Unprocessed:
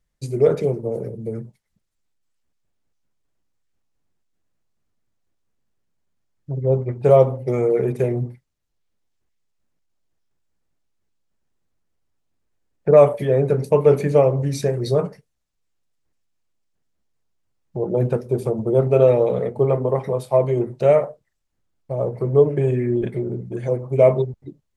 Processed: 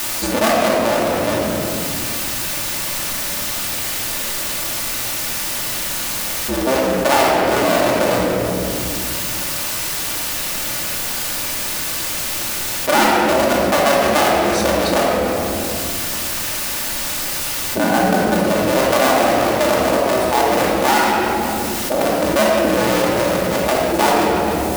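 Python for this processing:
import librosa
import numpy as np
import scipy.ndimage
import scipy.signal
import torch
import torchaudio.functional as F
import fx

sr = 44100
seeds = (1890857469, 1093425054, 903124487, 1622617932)

p1 = fx.cycle_switch(x, sr, every=2, mode='inverted')
p2 = scipy.signal.sosfilt(scipy.signal.butter(4, 76.0, 'highpass', fs=sr, output='sos'), p1)
p3 = fx.peak_eq(p2, sr, hz=100.0, db=-12.5, octaves=2.5)
p4 = fx.quant_dither(p3, sr, seeds[0], bits=6, dither='triangular')
p5 = p3 + F.gain(torch.from_numpy(p4), -4.5).numpy()
p6 = fx.small_body(p5, sr, hz=(220.0, 770.0, 1500.0), ring_ms=45, db=13, at=(17.77, 18.34))
p7 = fx.mod_noise(p6, sr, seeds[1], snr_db=15)
p8 = fx.room_shoebox(p7, sr, seeds[2], volume_m3=1600.0, walls='mixed', distance_m=2.5)
p9 = fx.env_flatten(p8, sr, amount_pct=70)
y = F.gain(torch.from_numpy(p9), -10.5).numpy()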